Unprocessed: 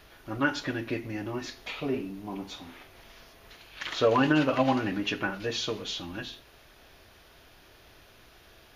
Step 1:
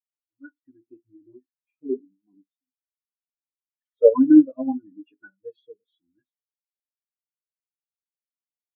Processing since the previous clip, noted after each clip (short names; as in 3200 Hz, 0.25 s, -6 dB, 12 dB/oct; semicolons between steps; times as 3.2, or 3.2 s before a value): AGC gain up to 13 dB; spectral expander 4:1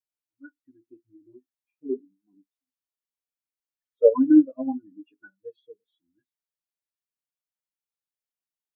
dynamic EQ 150 Hz, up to -4 dB, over -28 dBFS, Q 1.1; gain -2 dB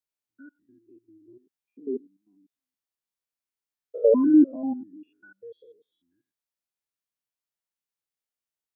stepped spectrum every 0.1 s; gain +1.5 dB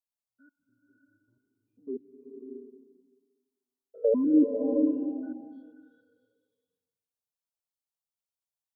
envelope phaser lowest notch 320 Hz, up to 1400 Hz, full sweep at -26 dBFS; bloom reverb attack 0.65 s, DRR 3.5 dB; gain -4.5 dB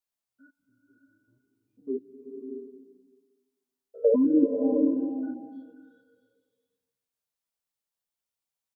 doubler 15 ms -5 dB; gain +2 dB